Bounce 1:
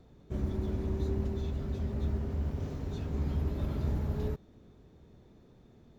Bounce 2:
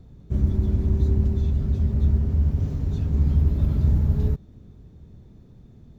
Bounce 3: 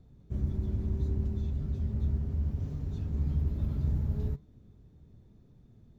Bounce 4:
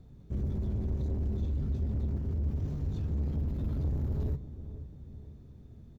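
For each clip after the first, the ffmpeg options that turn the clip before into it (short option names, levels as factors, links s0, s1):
-af "bass=f=250:g=13,treble=f=4000:g=3"
-af "flanger=delay=6.6:depth=3:regen=82:speed=1.8:shape=sinusoidal,volume=0.562"
-filter_complex "[0:a]asoftclip=type=tanh:threshold=0.0266,asplit=2[s0][s1];[s1]adelay=484,lowpass=f=890:p=1,volume=0.237,asplit=2[s2][s3];[s3]adelay=484,lowpass=f=890:p=1,volume=0.52,asplit=2[s4][s5];[s5]adelay=484,lowpass=f=890:p=1,volume=0.52,asplit=2[s6][s7];[s7]adelay=484,lowpass=f=890:p=1,volume=0.52,asplit=2[s8][s9];[s9]adelay=484,lowpass=f=890:p=1,volume=0.52[s10];[s0][s2][s4][s6][s8][s10]amix=inputs=6:normalize=0,volume=1.58"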